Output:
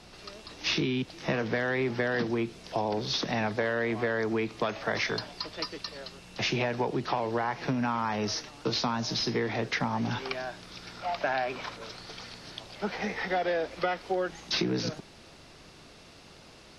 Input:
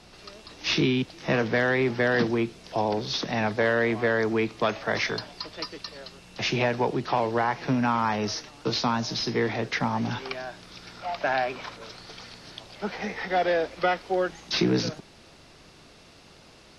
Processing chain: compression, threshold -25 dBFS, peak gain reduction 7 dB

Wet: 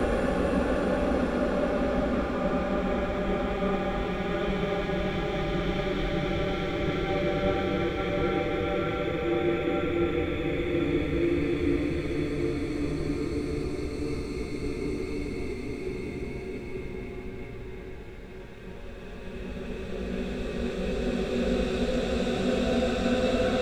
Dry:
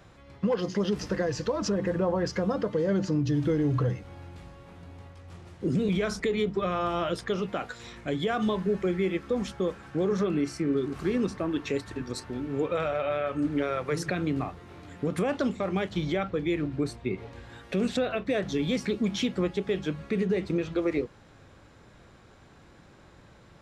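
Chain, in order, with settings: octave divider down 2 oct, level -2 dB; tone controls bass -5 dB, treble -4 dB; added noise brown -44 dBFS; Paulstretch 8.7×, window 1.00 s, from 15.30 s; three bands expanded up and down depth 40%; trim +2.5 dB

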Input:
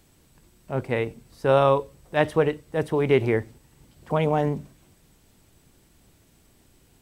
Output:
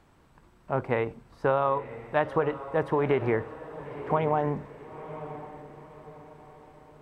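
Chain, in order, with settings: low-pass 2 kHz 6 dB/octave; peaking EQ 1.1 kHz +10.5 dB 1.6 oct; compression 6:1, threshold -19 dBFS, peak gain reduction 10.5 dB; on a send: echo that smears into a reverb 976 ms, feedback 41%, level -13 dB; on the sum: trim -2 dB

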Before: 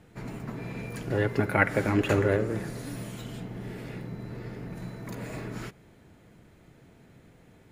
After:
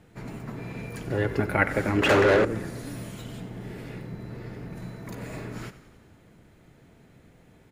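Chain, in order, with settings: frequency-shifting echo 93 ms, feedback 64%, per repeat -32 Hz, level -14.5 dB; 2.02–2.45 s: overdrive pedal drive 24 dB, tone 2.7 kHz, clips at -11 dBFS

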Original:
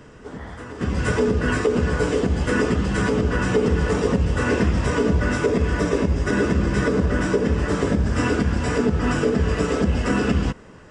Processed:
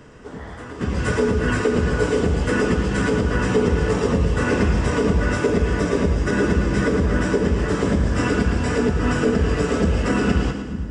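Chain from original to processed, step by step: two-band feedback delay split 330 Hz, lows 436 ms, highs 112 ms, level -8 dB

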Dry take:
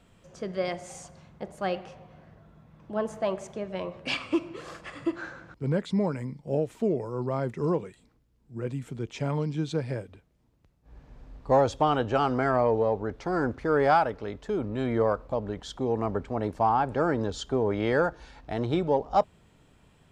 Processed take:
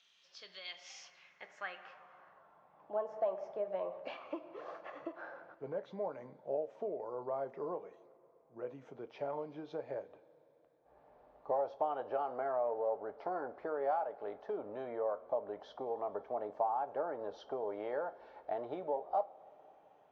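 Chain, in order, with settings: knee-point frequency compression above 3.9 kHz 1.5:1; bass shelf 410 Hz -9 dB; compression 4:1, threshold -35 dBFS, peak gain reduction 14 dB; two-slope reverb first 0.22 s, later 3.9 s, from -22 dB, DRR 9.5 dB; band-pass sweep 3.8 kHz -> 650 Hz, 0.59–3.06 s; trim +5 dB

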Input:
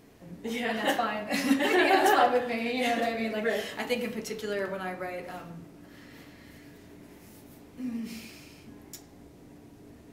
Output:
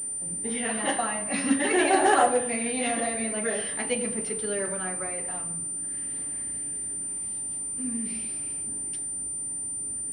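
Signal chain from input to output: phaser 0.47 Hz, delay 1.1 ms, feedback 22%; class-D stage that switches slowly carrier 9.1 kHz

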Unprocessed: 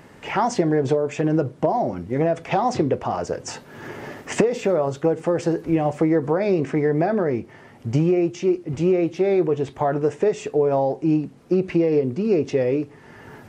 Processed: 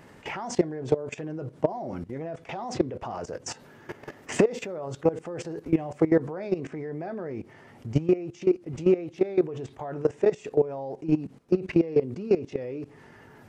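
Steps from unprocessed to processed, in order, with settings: level held to a coarse grid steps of 17 dB

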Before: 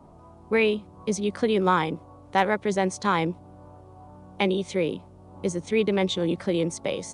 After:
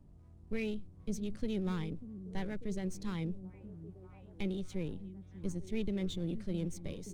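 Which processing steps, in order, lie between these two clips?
partial rectifier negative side -7 dB; amplifier tone stack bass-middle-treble 10-0-1; repeats whose band climbs or falls 592 ms, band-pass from 230 Hz, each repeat 0.7 oct, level -10 dB; trim +9 dB

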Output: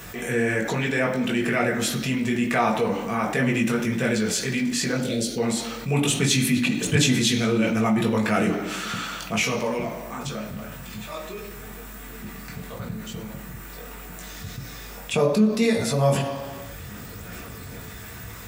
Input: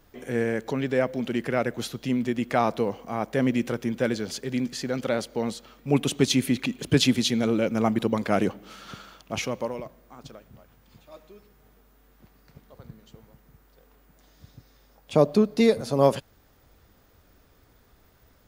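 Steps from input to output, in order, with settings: 4.95–5.38 s: Chebyshev band-stop 370–3700 Hz, order 2; chorus voices 6, 1.2 Hz, delay 20 ms, depth 3.3 ms; high-pass 73 Hz; reverberation RT60 1.0 s, pre-delay 3 ms, DRR 3 dB; level flattener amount 50%; trim +2 dB

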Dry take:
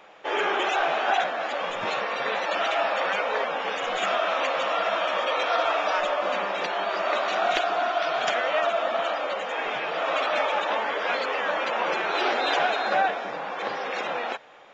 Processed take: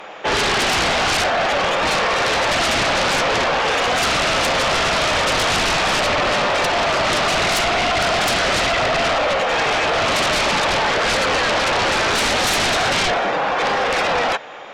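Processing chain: sine folder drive 16 dB, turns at -10 dBFS; trim -5 dB

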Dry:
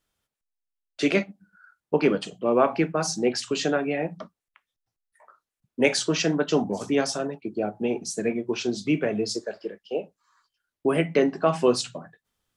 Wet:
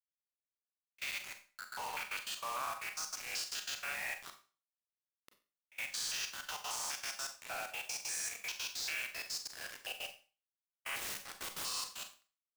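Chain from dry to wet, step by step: spectrogram pixelated in time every 200 ms; inverse Chebyshev high-pass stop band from 300 Hz, stop band 60 dB; expander -59 dBFS; treble shelf 3 kHz +7.5 dB; compression 5:1, threshold -48 dBFS, peak gain reduction 20 dB; peak limiter -39 dBFS, peak gain reduction 9 dB; 10.96–11.65 s: integer overflow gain 48.5 dB; bit crusher 9-bit; trance gate "x.x.xxxx." 192 bpm -24 dB; Schroeder reverb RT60 0.36 s, combs from 30 ms, DRR 6.5 dB; trim +10 dB

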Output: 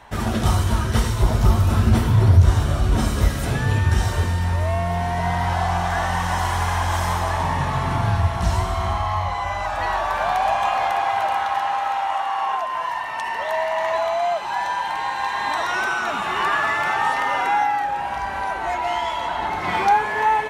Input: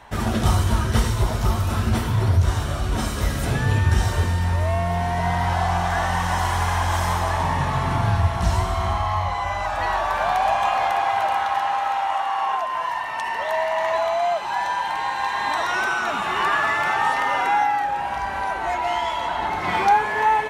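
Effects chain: 1.23–3.28 s: bass shelf 480 Hz +5.5 dB

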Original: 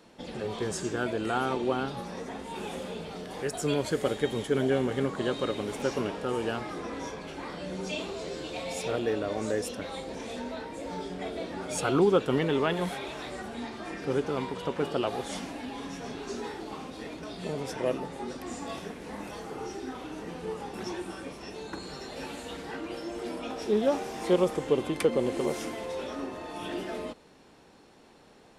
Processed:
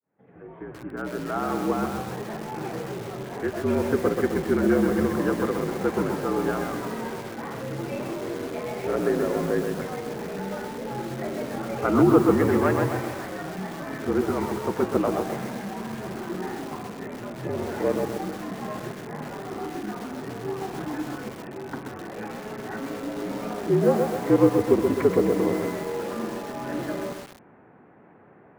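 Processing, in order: fade-in on the opening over 2.15 s; mistuned SSB -52 Hz 150–2100 Hz; bit-crushed delay 129 ms, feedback 55%, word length 7-bit, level -4 dB; trim +4.5 dB

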